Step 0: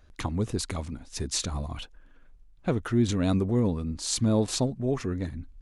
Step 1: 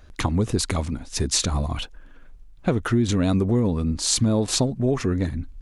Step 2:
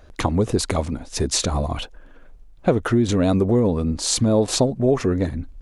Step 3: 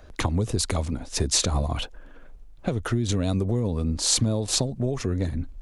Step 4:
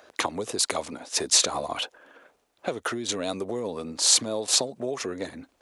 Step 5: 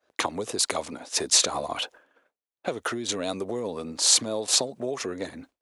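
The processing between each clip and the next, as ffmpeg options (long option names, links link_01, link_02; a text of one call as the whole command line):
ffmpeg -i in.wav -af "acompressor=threshold=-25dB:ratio=6,volume=8.5dB" out.wav
ffmpeg -i in.wav -af "equalizer=frequency=560:width=0.91:gain=7.5" out.wav
ffmpeg -i in.wav -filter_complex "[0:a]acrossover=split=130|3000[link_01][link_02][link_03];[link_02]acompressor=threshold=-26dB:ratio=6[link_04];[link_01][link_04][link_03]amix=inputs=3:normalize=0" out.wav
ffmpeg -i in.wav -af "highpass=450,volume=3dB" out.wav
ffmpeg -i in.wav -af "agate=range=-33dB:threshold=-43dB:ratio=3:detection=peak" out.wav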